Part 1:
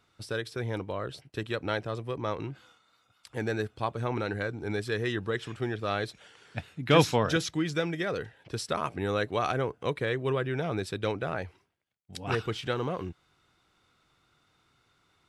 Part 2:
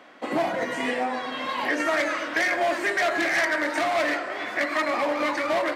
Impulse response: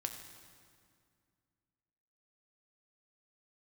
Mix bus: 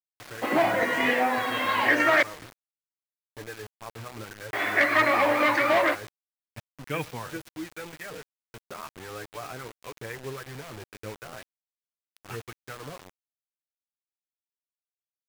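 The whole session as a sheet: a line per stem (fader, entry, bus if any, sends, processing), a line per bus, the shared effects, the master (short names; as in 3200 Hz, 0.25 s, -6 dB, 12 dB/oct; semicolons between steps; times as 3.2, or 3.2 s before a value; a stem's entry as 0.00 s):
-7.5 dB, 0.00 s, send -15.5 dB, echo send -19.5 dB, harmonic tremolo 3.8 Hz, depth 50%, crossover 830 Hz; band shelf 5400 Hz -11.5 dB; flange 0.86 Hz, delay 6.3 ms, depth 3.6 ms, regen +13%
0.0 dB, 0.20 s, muted 2.23–4.53, send -18.5 dB, no echo send, high shelf 5300 Hz -8.5 dB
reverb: on, RT60 2.2 s, pre-delay 4 ms
echo: feedback echo 0.127 s, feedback 34%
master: bell 2100 Hz +5.5 dB 2.1 oct; bit-crush 7-bit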